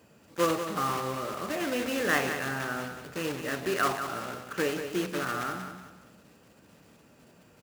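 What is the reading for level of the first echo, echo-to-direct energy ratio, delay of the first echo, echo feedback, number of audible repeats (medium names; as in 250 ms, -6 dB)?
-8.5 dB, -8.0 dB, 185 ms, 35%, 3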